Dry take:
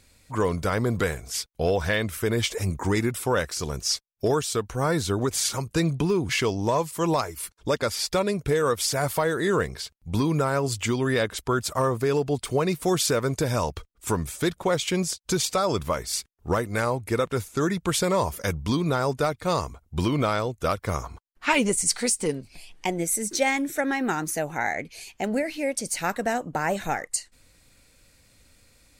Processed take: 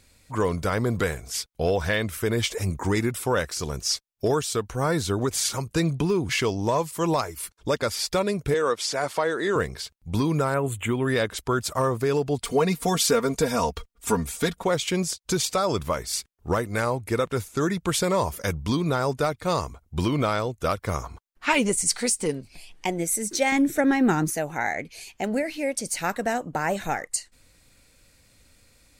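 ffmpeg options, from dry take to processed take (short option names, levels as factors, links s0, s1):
-filter_complex "[0:a]asettb=1/sr,asplit=3[s0][s1][s2];[s0]atrim=end=8.544[s3];[s1]atrim=start=8.54:end=9.56,asetpts=PTS-STARTPTS,afade=t=in:d=0.004:c=qsin,afade=t=out:st=1.016:d=0.004:c=qsin,highpass=260,lowpass=6800[s4];[s2]atrim=start=9.556[s5];[s3][s4]acrossfade=d=0.004:c1=hsin:c2=qsin[s6];[s6][s5]acrossfade=d=0.004:c1=qsin:c2=hsin,asettb=1/sr,asplit=3[s7][s8][s9];[s7]atrim=end=10.544[s10];[s8]atrim=start=10.54:end=11.08,asetpts=PTS-STARTPTS,afade=t=in:d=0.004:c=qsin,afade=t=out:st=0.536:d=0.004:c=qsin,asuperstop=centerf=5100:order=4:qfactor=1[s11];[s9]atrim=start=11.076[s12];[s10][s11]acrossfade=d=0.004:c1=hsin:c2=qsin[s13];[s13][s12]acrossfade=d=0.004:c1=qsin:c2=hsin,asettb=1/sr,asplit=3[s14][s15][s16];[s14]atrim=end=12.434[s17];[s15]atrim=start=12.43:end=14.64,asetpts=PTS-STARTPTS,afade=t=in:d=0.004:c=qsin,afade=t=out:st=2.206:d=0.004:c=qsin,aecho=1:1:4.3:0.8,atrim=end_sample=97461[s18];[s16]atrim=start=14.636[s19];[s17][s18]acrossfade=d=0.004:c1=hsin:c2=qsin[s20];[s20][s19]acrossfade=d=0.004:c1=qsin:c2=hsin,asettb=1/sr,asplit=3[s21][s22][s23];[s21]atrim=end=23.524[s24];[s22]atrim=start=23.52:end=24.3,asetpts=PTS-STARTPTS,afade=t=in:d=0.004:c=qsin,afade=t=out:st=0.776:d=0.004:c=qsin,lowshelf=f=380:g=11[s25];[s23]atrim=start=24.296[s26];[s24][s25]acrossfade=d=0.004:c1=hsin:c2=qsin[s27];[s27][s26]acrossfade=d=0.004:c1=qsin:c2=hsin"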